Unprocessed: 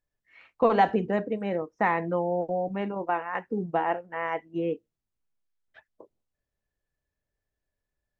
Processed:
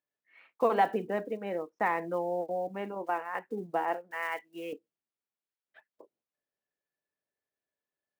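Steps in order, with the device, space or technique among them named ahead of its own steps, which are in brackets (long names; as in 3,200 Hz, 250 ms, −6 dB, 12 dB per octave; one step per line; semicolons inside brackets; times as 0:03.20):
early digital voice recorder (band-pass filter 260–3,900 Hz; one scale factor per block 7 bits)
0:04.11–0:04.73: tilt shelving filter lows −9 dB, about 1,100 Hz
level −4 dB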